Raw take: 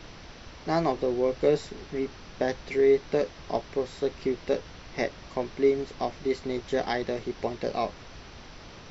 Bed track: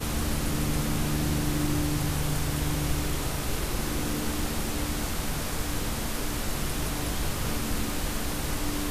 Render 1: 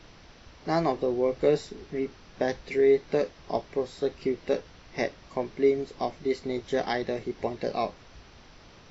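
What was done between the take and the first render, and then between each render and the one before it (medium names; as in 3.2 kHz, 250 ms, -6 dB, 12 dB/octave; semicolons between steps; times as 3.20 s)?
noise print and reduce 6 dB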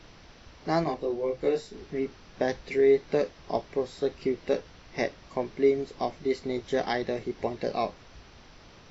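0.84–1.73 s: detune thickener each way 10 cents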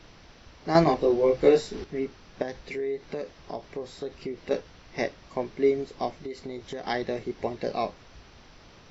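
0.75–1.84 s: gain +7.5 dB; 2.42–4.51 s: compression 2.5:1, threshold -32 dBFS; 6.14–6.86 s: compression, threshold -32 dBFS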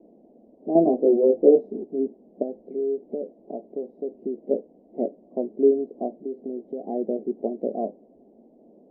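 elliptic band-pass 220–680 Hz, stop band 40 dB; tilt EQ -3.5 dB/octave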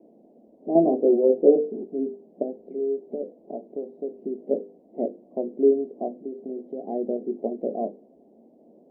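high-pass 70 Hz; hum notches 50/100/150/200/250/300/350/400/450/500 Hz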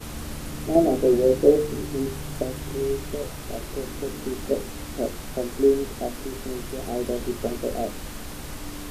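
add bed track -6 dB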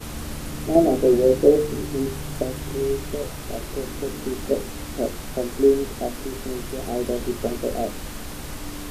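trim +2 dB; peak limiter -3 dBFS, peak gain reduction 1.5 dB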